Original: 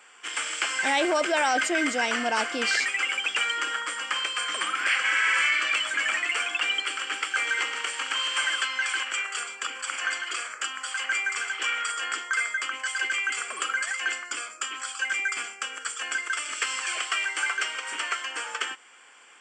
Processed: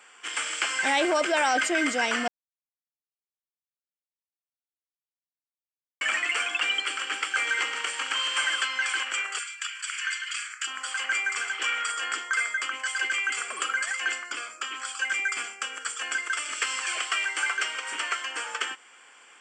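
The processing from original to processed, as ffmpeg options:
-filter_complex "[0:a]asplit=3[a][b][c];[a]afade=t=out:st=9.38:d=0.02[d];[b]highpass=f=1.5k:w=0.5412,highpass=f=1.5k:w=1.3066,afade=t=in:st=9.38:d=0.02,afade=t=out:st=10.66:d=0.02[e];[c]afade=t=in:st=10.66:d=0.02[f];[d][e][f]amix=inputs=3:normalize=0,asettb=1/sr,asplit=3[g][h][i];[g]atrim=end=14.244[j];[h]atrim=start=14.24:end=14.85,asetpts=PTS-STARTPTS,afade=t=in:d=0.004:c=qsin,afade=t=out:st=0.606:d=0.004:c=qsin,acrossover=split=5700[k][l];[l]acompressor=threshold=-45dB:ratio=4:attack=1:release=60[m];[k][m]amix=inputs=2:normalize=0[n];[i]atrim=start=14.846[o];[j][n]acrossfade=d=0.004:c1=hsin:c2=qsin[p];[p][o]acrossfade=d=0.004:c1=qsin:c2=hsin,asplit=3[q][r][s];[q]atrim=end=2.28,asetpts=PTS-STARTPTS,afade=t=out:st=2.276:d=0.004:c=hsin[t];[r]atrim=start=2.28:end=6.01,asetpts=PTS-STARTPTS,volume=0[u];[s]atrim=start=6.01,asetpts=PTS-STARTPTS,afade=t=in:d=0.004:c=hsin[v];[t][u][v]concat=n=3:v=0:a=1"

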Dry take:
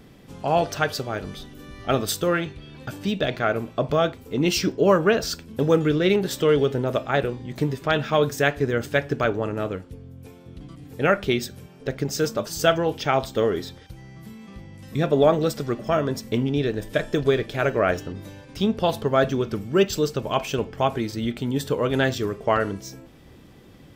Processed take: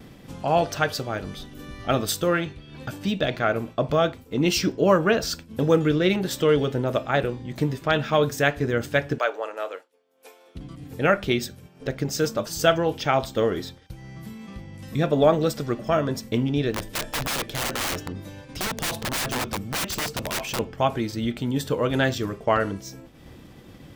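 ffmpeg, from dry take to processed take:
-filter_complex "[0:a]asettb=1/sr,asplit=3[a][b][c];[a]atrim=end=9.184[d];[b]atrim=start=9.18:end=10.55,asetpts=PTS-STARTPTS,afade=t=in:d=0.004:c=qsin,afade=t=out:st=1.366:d=0.004:c=qsin,highpass=f=490:w=0.5412,highpass=f=490:w=1.3066[e];[c]atrim=start=10.546[f];[d][e]acrossfade=d=0.004:c1=hsin:c2=qsin[g];[g][f]acrossfade=d=0.004:c1=qsin:c2=hsin,asettb=1/sr,asplit=3[h][i][j];[h]atrim=end=16.734[k];[i]atrim=start=16.73:end=20.59,asetpts=PTS-STARTPTS,afade=t=in:d=0.004:c=qsin,afade=t=out:st=3.856:d=0.004:c=qsin,aeval=exprs='(mod(11.9*val(0)+1,2)-1)/11.9':c=same[l];[j]atrim=start=20.586[m];[k][l]acrossfade=d=0.004:c1=hsin:c2=qsin[n];[n][m]acrossfade=d=0.004:c1=qsin:c2=hsin,bandreject=f=410:w=12,acompressor=mode=upward:threshold=-30dB:ratio=2.5,agate=range=-33dB:threshold=-34dB:ratio=3:detection=peak"

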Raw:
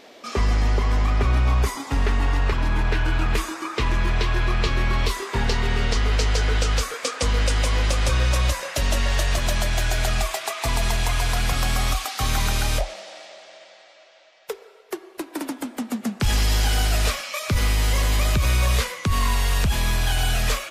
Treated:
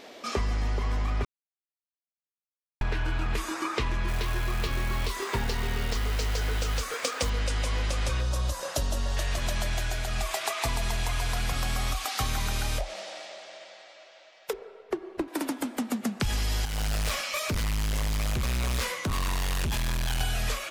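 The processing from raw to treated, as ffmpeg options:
-filter_complex "[0:a]asettb=1/sr,asplit=3[a][b][c];[a]atrim=end=4.084[d];[b]atrim=start=4.08:end=7.3,asetpts=PTS-STARTPTS,afade=t=in:d=0.004:c=qsin,afade=t=out:st=3.216:d=0.004:c=qsin,acrusher=bits=4:mode=log:mix=0:aa=0.000001[e];[c]atrim=start=7.296[f];[d][e]acrossfade=d=0.004:c1=hsin:c2=qsin[g];[g][f]acrossfade=d=0.004:c1=qsin:c2=hsin,asettb=1/sr,asplit=3[h][i][j];[h]atrim=end=8.214[k];[i]atrim=start=8.21:end=9.17,asetpts=PTS-STARTPTS,afade=t=in:d=0.004:c=qsin,afade=t=out:st=0.956:d=0.004:c=qsin,equalizer=f=2.2k:w=1.6:g=-11.5[l];[j]atrim=start=9.166[m];[k][l]acrossfade=d=0.004:c1=hsin:c2=qsin[n];[n][m]acrossfade=d=0.004:c1=qsin:c2=hsin,asettb=1/sr,asplit=3[o][p][q];[o]atrim=end=14.534[r];[p]atrim=start=14.53:end=15.28,asetpts=PTS-STARTPTS,afade=t=in:d=0.004:c=qsin,afade=t=out:st=0.746:d=0.004:c=qsin,aemphasis=mode=reproduction:type=riaa[s];[q]atrim=start=15.276[t];[r][s]acrossfade=d=0.004:c1=hsin:c2=qsin[u];[u][t]acrossfade=d=0.004:c1=qsin:c2=hsin,asettb=1/sr,asplit=3[v][w][x];[v]atrim=end=16.654[y];[w]atrim=start=16.65:end=20.21,asetpts=PTS-STARTPTS,afade=t=in:d=0.004:c=qsin,afade=t=out:st=3.556:d=0.004:c=qsin,asoftclip=type=hard:threshold=-25dB[z];[x]atrim=start=20.206[aa];[y][z]acrossfade=d=0.004:c1=hsin:c2=qsin[ab];[ab][aa]acrossfade=d=0.004:c1=qsin:c2=hsin,asplit=4[ac][ad][ae][af];[ac]atrim=end=1.25,asetpts=PTS-STARTPTS,afade=t=out:st=1.246:d=0.004:c=hsin[ag];[ad]atrim=start=1.25:end=2.81,asetpts=PTS-STARTPTS,volume=0[ah];[ae]atrim=start=2.81:end=10.07,asetpts=PTS-STARTPTS,afade=t=in:d=0.004:c=hsin,afade=t=out:st=6.92:d=0.34:silence=0.354813[ai];[af]atrim=start=10.07,asetpts=PTS-STARTPTS,afade=t=in:d=0.34:silence=0.354813[aj];[ag][ah][ai][aj]concat=n=4:v=0:a=1,acompressor=threshold=-25dB:ratio=6"

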